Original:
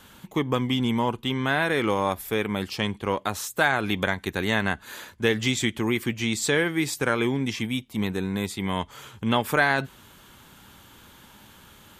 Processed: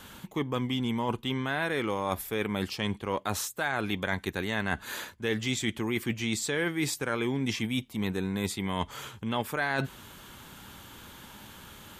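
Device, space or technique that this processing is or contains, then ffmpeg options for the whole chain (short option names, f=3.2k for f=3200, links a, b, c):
compression on the reversed sound: -af "areverse,acompressor=threshold=-29dB:ratio=6,areverse,volume=2.5dB"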